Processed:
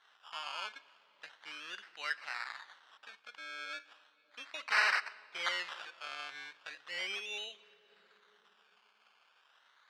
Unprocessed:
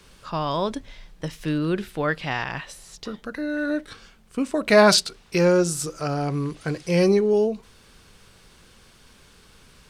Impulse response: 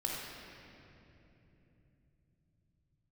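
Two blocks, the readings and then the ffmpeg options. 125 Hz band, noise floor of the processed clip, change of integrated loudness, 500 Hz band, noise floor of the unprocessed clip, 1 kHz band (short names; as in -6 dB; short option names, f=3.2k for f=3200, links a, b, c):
under -40 dB, -70 dBFS, -15.0 dB, -31.5 dB, -54 dBFS, -13.5 dB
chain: -filter_complex "[0:a]agate=range=-33dB:threshold=-45dB:ratio=3:detection=peak,acrusher=samples=18:mix=1:aa=0.000001:lfo=1:lforange=10.8:lforate=0.36,aeval=exprs='(mod(2.99*val(0)+1,2)-1)/2.99':c=same,asuperpass=centerf=2400:order=4:qfactor=0.79,asplit=2[a][b];[1:a]atrim=start_sample=2205,asetrate=74970,aresample=44100[c];[b][c]afir=irnorm=-1:irlink=0,volume=-14.5dB[d];[a][d]amix=inputs=2:normalize=0,acompressor=mode=upward:threshold=-47dB:ratio=2.5,volume=-9dB"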